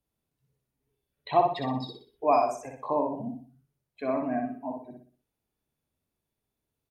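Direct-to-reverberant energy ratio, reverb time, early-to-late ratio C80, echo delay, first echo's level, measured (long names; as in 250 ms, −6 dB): no reverb audible, no reverb audible, no reverb audible, 61 ms, −4.0 dB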